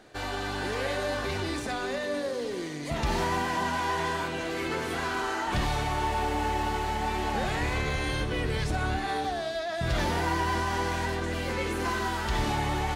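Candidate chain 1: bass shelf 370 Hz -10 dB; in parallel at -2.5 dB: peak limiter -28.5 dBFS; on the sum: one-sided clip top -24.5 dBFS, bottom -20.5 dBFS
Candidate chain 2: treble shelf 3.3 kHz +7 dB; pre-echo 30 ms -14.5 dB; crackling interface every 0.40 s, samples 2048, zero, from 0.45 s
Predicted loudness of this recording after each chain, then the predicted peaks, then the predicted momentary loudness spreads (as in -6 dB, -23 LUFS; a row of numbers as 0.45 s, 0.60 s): -29.0 LUFS, -29.0 LUFS; -20.0 dBFS, -16.0 dBFS; 3 LU, 4 LU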